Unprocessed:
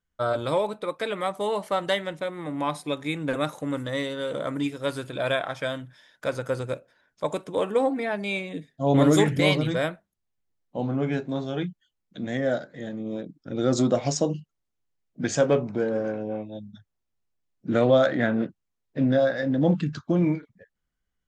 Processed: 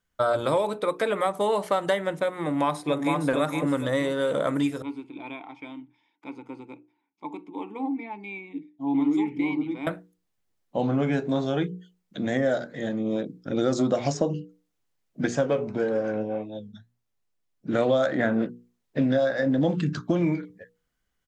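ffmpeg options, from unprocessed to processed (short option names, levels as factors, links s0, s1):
-filter_complex "[0:a]asplit=2[s0][s1];[s1]afade=t=in:st=2.42:d=0.01,afade=t=out:st=3.2:d=0.01,aecho=0:1:460|920|1380|1840:0.668344|0.167086|0.0417715|0.0104429[s2];[s0][s2]amix=inputs=2:normalize=0,asettb=1/sr,asplit=3[s3][s4][s5];[s3]atrim=end=4.824[s6];[s4]atrim=start=4.82:end=9.87,asetpts=PTS-STARTPTS,afade=t=in:d=0.004:c=qsin,afade=t=out:st=5.046:d=0.004:c=qsin,asplit=3[s7][s8][s9];[s7]bandpass=f=300:t=q:w=8,volume=1[s10];[s8]bandpass=f=870:t=q:w=8,volume=0.501[s11];[s9]bandpass=f=2240:t=q:w=8,volume=0.355[s12];[s10][s11][s12]amix=inputs=3:normalize=0[s13];[s5]atrim=start=9.866[s14];[s6][s13]acrossfade=d=0.004:c1=hsin:c2=qsin[s15];[s15][s14]acrossfade=d=0.004:c1=qsin:c2=hsin,asplit=3[s16][s17][s18];[s16]afade=t=out:st=15.26:d=0.02[s19];[s17]flanger=delay=6.2:depth=3.3:regen=71:speed=1.7:shape=triangular,afade=t=in:st=15.26:d=0.02,afade=t=out:st=17.78:d=0.02[s20];[s18]afade=t=in:st=17.78:d=0.02[s21];[s19][s20][s21]amix=inputs=3:normalize=0,lowshelf=f=130:g=-5.5,bandreject=f=60:t=h:w=6,bandreject=f=120:t=h:w=6,bandreject=f=180:t=h:w=6,bandreject=f=240:t=h:w=6,bandreject=f=300:t=h:w=6,bandreject=f=360:t=h:w=6,bandreject=f=420:t=h:w=6,bandreject=f=480:t=h:w=6,acrossover=split=1900|6500[s22][s23][s24];[s22]acompressor=threshold=0.0447:ratio=4[s25];[s23]acompressor=threshold=0.00355:ratio=4[s26];[s24]acompressor=threshold=0.002:ratio=4[s27];[s25][s26][s27]amix=inputs=3:normalize=0,volume=2.11"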